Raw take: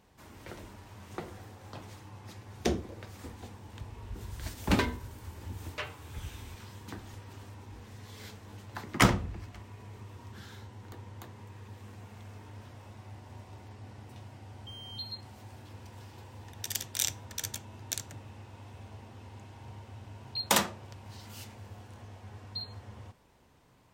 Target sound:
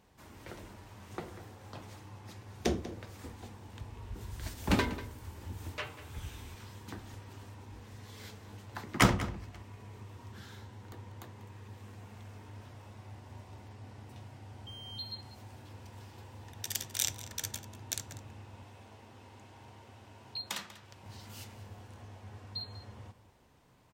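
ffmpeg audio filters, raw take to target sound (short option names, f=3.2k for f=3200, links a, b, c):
-filter_complex "[0:a]asettb=1/sr,asplit=3[a][b][c];[a]atrim=end=18.624[d];[b]atrim=start=18.62:end=21.04,asetpts=PTS-STARTPTS,afade=t=in:d=0.004:c=qsin,afade=t=out:st=2.416:d=0.004:c=qsin,acrossover=split=220|1300|5800[e][f][g][h];[e]acompressor=threshold=-56dB:ratio=4[i];[f]acompressor=threshold=-52dB:ratio=4[j];[g]acompressor=threshold=-38dB:ratio=4[k];[h]acompressor=threshold=-48dB:ratio=4[l];[i][j][k][l]amix=inputs=4:normalize=0[m];[c]atrim=start=21.036[n];[d][m]acrossfade=d=0.004:c1=hsin:c2=qsin[o];[o][n]acrossfade=d=0.004:c1=qsin:c2=hsin,asplit=2[p][q];[q]adelay=192.4,volume=-14dB,highshelf=f=4k:g=-4.33[r];[p][r]amix=inputs=2:normalize=0,volume=-1.5dB"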